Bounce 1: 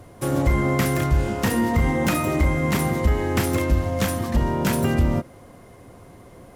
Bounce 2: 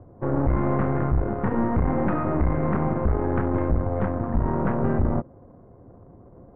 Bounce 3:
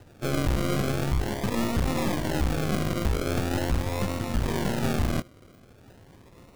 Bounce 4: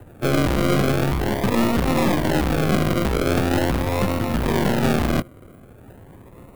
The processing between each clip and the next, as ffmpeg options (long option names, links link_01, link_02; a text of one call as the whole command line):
ffmpeg -i in.wav -af "adynamicsmooth=sensitivity=3.5:basefreq=590,aeval=exprs='(tanh(11.2*val(0)+0.8)-tanh(0.8))/11.2':channel_layout=same,lowpass=frequency=1500:width=0.5412,lowpass=frequency=1500:width=1.3066,volume=3.5dB" out.wav
ffmpeg -i in.wav -af "acrusher=samples=39:mix=1:aa=0.000001:lfo=1:lforange=23.4:lforate=0.42,volume=-3.5dB" out.wav
ffmpeg -i in.wav -filter_complex "[0:a]acrossover=split=130|7600[link_01][link_02][link_03];[link_01]asoftclip=type=tanh:threshold=-30dB[link_04];[link_02]adynamicsmooth=sensitivity=5:basefreq=2200[link_05];[link_04][link_05][link_03]amix=inputs=3:normalize=0,volume=8dB" out.wav